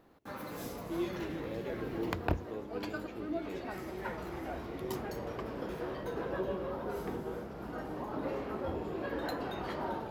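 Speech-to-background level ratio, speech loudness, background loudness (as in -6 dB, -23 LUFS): -3.0 dB, -42.5 LUFS, -39.5 LUFS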